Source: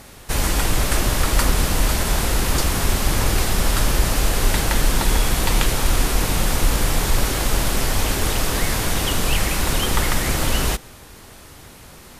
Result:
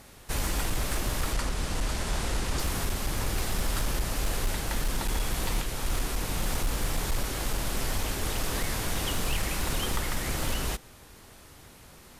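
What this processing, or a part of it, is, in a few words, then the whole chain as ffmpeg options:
limiter into clipper: -filter_complex "[0:a]alimiter=limit=-8.5dB:level=0:latency=1:release=494,asoftclip=type=hard:threshold=-13dB,asplit=3[link_01][link_02][link_03];[link_01]afade=type=out:start_time=1.33:duration=0.02[link_04];[link_02]lowpass=9500,afade=type=in:start_time=1.33:duration=0.02,afade=type=out:start_time=2.58:duration=0.02[link_05];[link_03]afade=type=in:start_time=2.58:duration=0.02[link_06];[link_04][link_05][link_06]amix=inputs=3:normalize=0,volume=-8.5dB"

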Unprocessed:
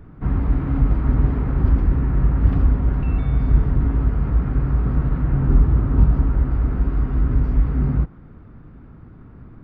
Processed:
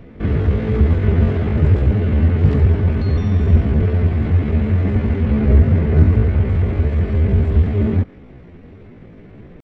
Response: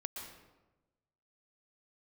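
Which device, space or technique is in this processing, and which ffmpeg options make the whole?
chipmunk voice: -af "asetrate=70004,aresample=44100,atempo=0.629961,volume=2.5dB"

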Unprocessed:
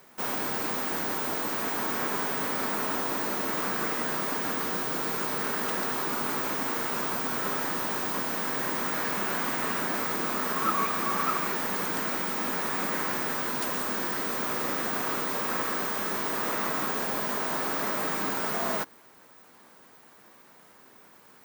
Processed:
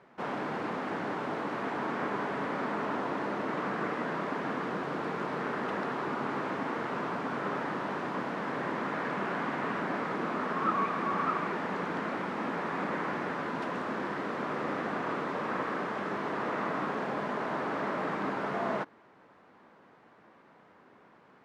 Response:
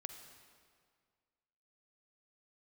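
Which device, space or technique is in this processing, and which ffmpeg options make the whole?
phone in a pocket: -af "lowpass=3100,highshelf=frequency=2400:gain=-9"

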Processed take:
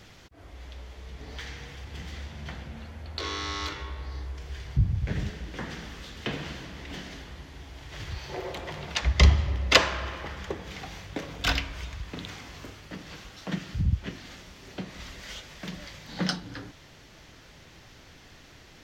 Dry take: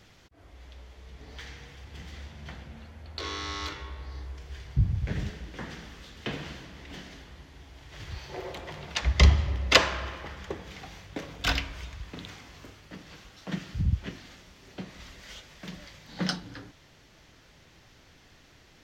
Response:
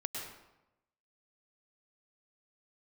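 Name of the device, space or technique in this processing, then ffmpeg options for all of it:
parallel compression: -filter_complex "[0:a]asplit=2[link_01][link_02];[link_02]acompressor=threshold=-42dB:ratio=6,volume=-1.5dB[link_03];[link_01][link_03]amix=inputs=2:normalize=0"

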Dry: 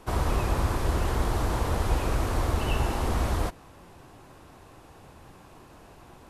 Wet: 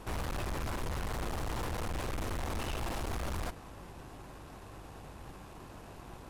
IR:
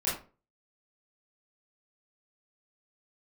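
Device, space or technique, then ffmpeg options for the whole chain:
valve amplifier with mains hum: -af "aeval=exprs='(tanh(79.4*val(0)+0.55)-tanh(0.55))/79.4':channel_layout=same,aeval=exprs='val(0)+0.00158*(sin(2*PI*50*n/s)+sin(2*PI*2*50*n/s)/2+sin(2*PI*3*50*n/s)/3+sin(2*PI*4*50*n/s)/4+sin(2*PI*5*50*n/s)/5)':channel_layout=same,volume=3dB"

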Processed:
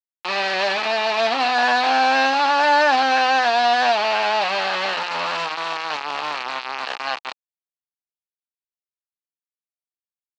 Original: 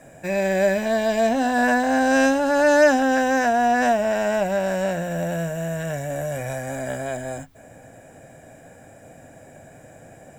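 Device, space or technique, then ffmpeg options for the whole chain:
hand-held game console: -af "acrusher=bits=3:mix=0:aa=0.000001,highpass=480,equalizer=frequency=580:width_type=q:width=4:gain=-6,equalizer=frequency=840:width_type=q:width=4:gain=9,equalizer=frequency=1200:width_type=q:width=4:gain=6,equalizer=frequency=2600:width_type=q:width=4:gain=7,equalizer=frequency=4300:width_type=q:width=4:gain=7,lowpass=frequency=4700:width=0.5412,lowpass=frequency=4700:width=1.3066"

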